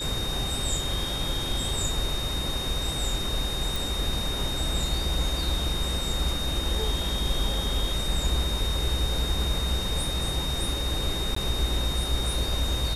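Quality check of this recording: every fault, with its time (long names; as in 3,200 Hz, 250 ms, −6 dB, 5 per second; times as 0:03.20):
whistle 3,700 Hz −31 dBFS
0:03.76: click
0:11.35–0:11.36: drop-out 14 ms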